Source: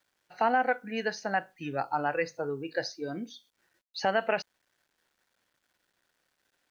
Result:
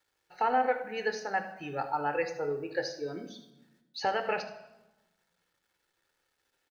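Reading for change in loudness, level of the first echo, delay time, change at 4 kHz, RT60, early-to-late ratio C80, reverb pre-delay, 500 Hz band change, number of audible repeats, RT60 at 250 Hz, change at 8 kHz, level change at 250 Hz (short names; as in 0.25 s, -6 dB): -1.5 dB, -13.0 dB, 75 ms, -2.0 dB, 1.1 s, 13.0 dB, 11 ms, -1.0 dB, 1, 1.4 s, n/a, -4.5 dB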